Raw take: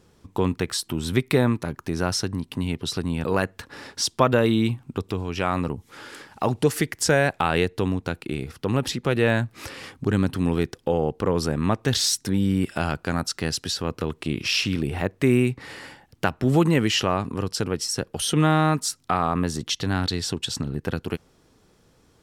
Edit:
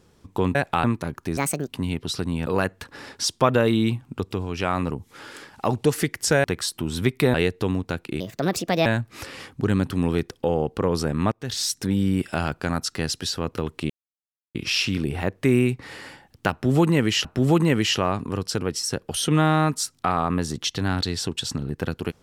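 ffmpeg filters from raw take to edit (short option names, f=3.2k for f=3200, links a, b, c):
-filter_complex "[0:a]asplit=12[a][b][c][d][e][f][g][h][i][j][k][l];[a]atrim=end=0.552[m];[b]atrim=start=7.218:end=7.512[n];[c]atrim=start=1.448:end=1.984[o];[d]atrim=start=1.98:end=2.46,asetpts=PTS-STARTPTS,asetrate=68355,aresample=44100[p];[e]atrim=start=2.456:end=7.222[q];[f]atrim=start=0.548:end=1.452[r];[g]atrim=start=7.508:end=8.374[s];[h]atrim=start=8.37:end=9.29,asetpts=PTS-STARTPTS,asetrate=61740,aresample=44100,atrim=end_sample=28980,asetpts=PTS-STARTPTS[t];[i]atrim=start=9.286:end=11.75,asetpts=PTS-STARTPTS,afade=t=out:st=2.46:d=0.004:c=hsin:silence=0.1[u];[j]atrim=start=11.75:end=14.33,asetpts=PTS-STARTPTS,afade=t=in:d=0.5:silence=0.1,afade=t=out:st=2.576:d=0.004:c=hsin,apad=pad_dur=0.65[v];[k]atrim=start=14.33:end=17.032,asetpts=PTS-STARTPTS,afade=t=in:d=0.004:c=hsin[w];[l]atrim=start=16.298[x];[m][n]acrossfade=d=0.004:c1=hsin:c2=hsin[y];[y][o]acrossfade=d=0.004:c1=hsin:c2=hsin[z];[z][p]acrossfade=d=0.004:c1=hsin:c2=hsin[aa];[aa][q]acrossfade=d=0.004:c1=hsin:c2=hsin[ab];[ab][r]acrossfade=d=0.004:c1=hsin:c2=hsin[ac];[ac][s]acrossfade=d=0.004:c1=hsin:c2=hsin[ad];[ad][t]acrossfade=d=0.004:c1=hsin:c2=hsin[ae];[u][v][w]concat=n=3:v=0:a=1[af];[ae][af]acrossfade=d=0.004:c1=hsin:c2=hsin[ag];[ag][x]acrossfade=d=0.004:c1=hsin:c2=hsin"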